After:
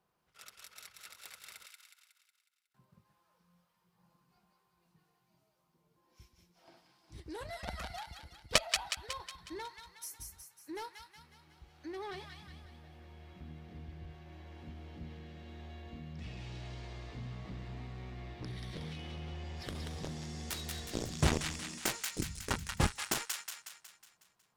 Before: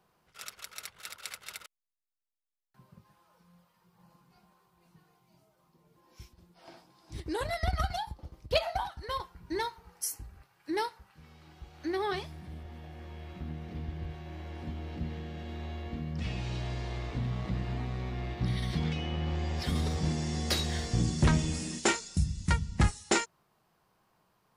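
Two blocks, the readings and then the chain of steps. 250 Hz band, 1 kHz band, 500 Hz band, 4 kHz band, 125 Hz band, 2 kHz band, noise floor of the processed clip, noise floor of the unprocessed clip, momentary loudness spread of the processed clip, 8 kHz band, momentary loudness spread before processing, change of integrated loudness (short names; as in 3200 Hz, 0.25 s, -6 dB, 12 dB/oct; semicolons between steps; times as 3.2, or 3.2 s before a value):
-9.0 dB, -7.5 dB, -8.0 dB, -2.0 dB, -9.5 dB, -4.0 dB, -77 dBFS, -73 dBFS, 20 LU, -2.0 dB, 15 LU, -6.0 dB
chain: added harmonics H 3 -6 dB, 5 -23 dB, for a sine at -14 dBFS; thin delay 0.183 s, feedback 52%, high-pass 1500 Hz, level -3 dB; gain +7.5 dB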